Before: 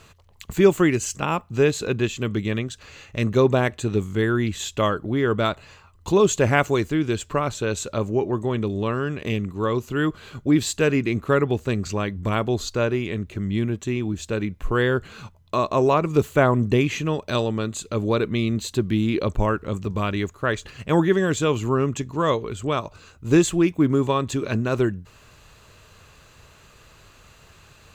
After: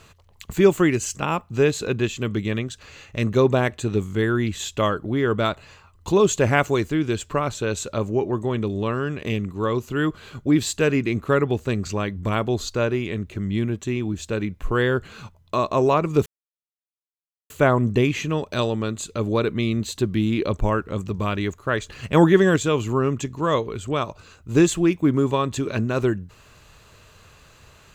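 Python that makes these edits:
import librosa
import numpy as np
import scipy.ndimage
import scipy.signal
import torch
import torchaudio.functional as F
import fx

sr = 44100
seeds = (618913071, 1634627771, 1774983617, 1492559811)

y = fx.edit(x, sr, fx.insert_silence(at_s=16.26, length_s=1.24),
    fx.clip_gain(start_s=20.71, length_s=0.61, db=4.0), tone=tone)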